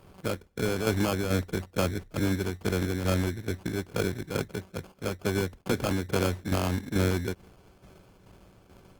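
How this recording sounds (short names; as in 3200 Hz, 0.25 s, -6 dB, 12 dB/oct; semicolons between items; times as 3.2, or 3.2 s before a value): a buzz of ramps at a fixed pitch in blocks of 8 samples; tremolo saw down 2.3 Hz, depth 55%; aliases and images of a low sample rate 1900 Hz, jitter 0%; Opus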